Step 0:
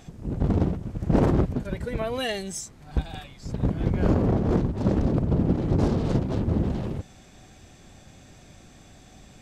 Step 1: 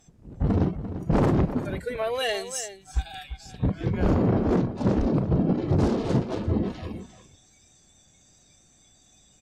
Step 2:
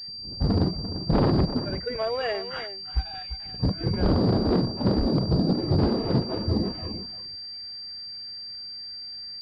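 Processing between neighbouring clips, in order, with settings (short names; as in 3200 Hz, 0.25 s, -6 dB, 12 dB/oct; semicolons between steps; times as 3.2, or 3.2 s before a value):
spectral noise reduction 16 dB; sine folder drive 6 dB, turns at -8 dBFS; outdoor echo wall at 59 m, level -11 dB; gain -7.5 dB
pulse-width modulation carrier 4700 Hz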